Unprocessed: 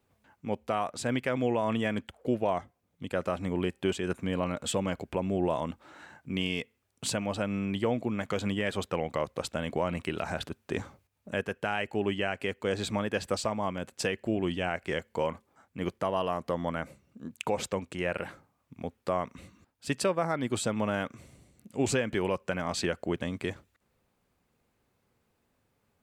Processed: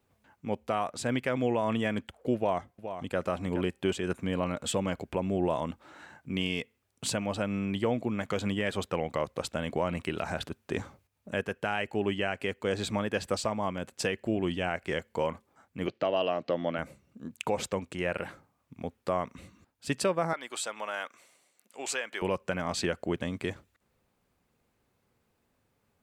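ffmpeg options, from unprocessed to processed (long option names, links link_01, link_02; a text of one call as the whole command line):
ffmpeg -i in.wav -filter_complex "[0:a]asplit=2[link_01][link_02];[link_02]afade=type=in:start_time=2.36:duration=0.01,afade=type=out:start_time=3.19:duration=0.01,aecho=0:1:420|840:0.334965|0.0502448[link_03];[link_01][link_03]amix=inputs=2:normalize=0,asplit=3[link_04][link_05][link_06];[link_04]afade=type=out:start_time=15.86:duration=0.02[link_07];[link_05]highpass=frequency=120:width=0.5412,highpass=frequency=120:width=1.3066,equalizer=frequency=190:width_type=q:width=4:gain=-5,equalizer=frequency=310:width_type=q:width=4:gain=4,equalizer=frequency=610:width_type=q:width=4:gain=5,equalizer=frequency=1000:width_type=q:width=4:gain=-8,equalizer=frequency=2700:width_type=q:width=4:gain=7,equalizer=frequency=4200:width_type=q:width=4:gain=7,lowpass=frequency=5300:width=0.5412,lowpass=frequency=5300:width=1.3066,afade=type=in:start_time=15.86:duration=0.02,afade=type=out:start_time=16.77:duration=0.02[link_08];[link_06]afade=type=in:start_time=16.77:duration=0.02[link_09];[link_07][link_08][link_09]amix=inputs=3:normalize=0,asettb=1/sr,asplit=3[link_10][link_11][link_12];[link_10]atrim=end=20.334[link_13];[link_11]atrim=start=20.33:end=22.22,asetpts=PTS-STARTPTS,afade=type=in:duration=0.004:curve=qsin,afade=type=out:start_time=1.886:duration=0.004:curve=qsin,highpass=790[link_14];[link_12]atrim=start=22.216[link_15];[link_13][link_14]acrossfade=duration=0.004:curve1=hsin:curve2=qsin[link_16];[link_16][link_15]acrossfade=duration=0.004:curve1=qsin:curve2=hsin" out.wav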